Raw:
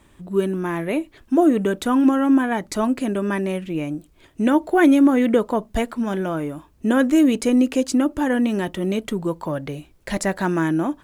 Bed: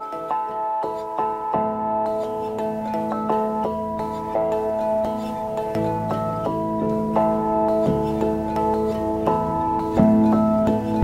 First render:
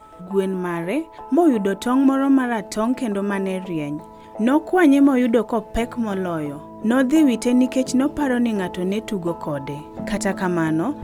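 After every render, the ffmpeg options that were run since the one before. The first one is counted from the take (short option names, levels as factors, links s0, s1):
-filter_complex "[1:a]volume=0.188[s0];[0:a][s0]amix=inputs=2:normalize=0"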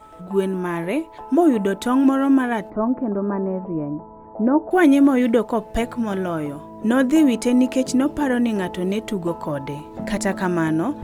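-filter_complex "[0:a]asettb=1/sr,asplit=3[s0][s1][s2];[s0]atrim=end=2.704[s3];[s1]atrim=start=2.7:end=4.71,asetpts=PTS-STARTPTS,afade=t=in:d=0.004:c=qsin,afade=t=out:st=2.006:d=0.004:c=qsin,lowpass=f=1200:w=0.5412,lowpass=f=1200:w=1.3066[s4];[s2]atrim=start=4.706[s5];[s3][s4]acrossfade=d=0.004:c1=hsin:c2=qsin[s6];[s6][s5]acrossfade=d=0.004:c1=qsin:c2=hsin"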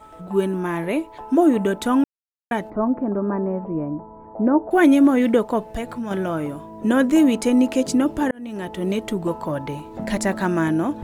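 -filter_complex "[0:a]asettb=1/sr,asplit=3[s0][s1][s2];[s0]atrim=end=5.714[s3];[s1]atrim=start=5.71:end=6.11,asetpts=PTS-STARTPTS,afade=t=in:d=0.004:c=qsin,afade=t=out:st=0.396:d=0.004:c=qsin,acompressor=threshold=0.0398:ratio=2:attack=3.2:release=140:knee=1:detection=peak[s4];[s2]atrim=start=6.106[s5];[s3][s4]acrossfade=d=0.004:c1=hsin:c2=qsin[s6];[s6][s5]acrossfade=d=0.004:c1=qsin:c2=hsin,asplit=4[s7][s8][s9][s10];[s7]atrim=end=2.04,asetpts=PTS-STARTPTS,afade=t=out:st=2.036:d=0.004:c=hsin[s11];[s8]atrim=start=2.04:end=2.51,asetpts=PTS-STARTPTS,volume=0[s12];[s9]atrim=start=2.51:end=8.31,asetpts=PTS-STARTPTS,afade=t=in:d=0.004:c=hsin,afade=t=out:st=5.796:d=0.004:c=hsin[s13];[s10]atrim=start=8.31,asetpts=PTS-STARTPTS,afade=t=in:d=0.6[s14];[s11][s12][s13][s14]concat=n=4:v=0:a=1"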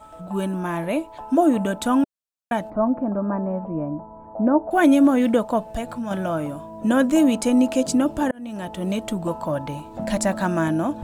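-af "equalizer=f=400:t=o:w=0.33:g=-11,equalizer=f=630:t=o:w=0.33:g=5,equalizer=f=2000:t=o:w=0.33:g=-6,equalizer=f=8000:t=o:w=0.33:g=4"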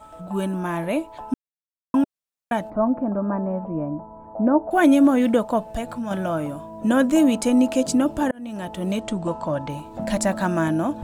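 -filter_complex "[0:a]asettb=1/sr,asplit=3[s0][s1][s2];[s0]atrim=end=9.004[s3];[s1]atrim=start=9:end=9.7,asetpts=PTS-STARTPTS,afade=t=in:d=0.004:c=qsin,afade=t=out:st=0.696:d=0.004:c=qsin,lowpass=f=8500:w=0.5412,lowpass=f=8500:w=1.3066[s4];[s2]atrim=start=9.696[s5];[s3][s4]acrossfade=d=0.004:c1=hsin:c2=qsin[s6];[s6][s5]acrossfade=d=0.004:c1=qsin:c2=hsin,asplit=3[s7][s8][s9];[s7]atrim=end=1.34,asetpts=PTS-STARTPTS,afade=t=out:st=1.336:d=0.004:c=hsin[s10];[s8]atrim=start=1.34:end=1.94,asetpts=PTS-STARTPTS,volume=0[s11];[s9]atrim=start=1.94,asetpts=PTS-STARTPTS,afade=t=in:d=0.004:c=hsin[s12];[s10][s11][s12]concat=n=3:v=0:a=1"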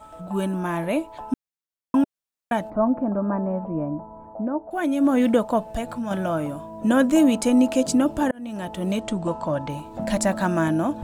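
-filter_complex "[0:a]asplit=3[s0][s1][s2];[s0]atrim=end=4.48,asetpts=PTS-STARTPTS,afade=t=out:st=4.23:d=0.25:silence=0.375837[s3];[s1]atrim=start=4.48:end=4.94,asetpts=PTS-STARTPTS,volume=0.376[s4];[s2]atrim=start=4.94,asetpts=PTS-STARTPTS,afade=t=in:d=0.25:silence=0.375837[s5];[s3][s4][s5]concat=n=3:v=0:a=1"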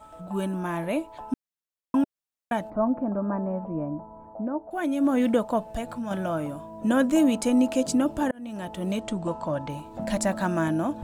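-af "volume=0.668"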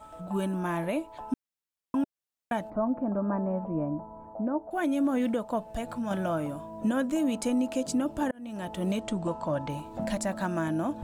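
-af "alimiter=limit=0.106:level=0:latency=1:release=492"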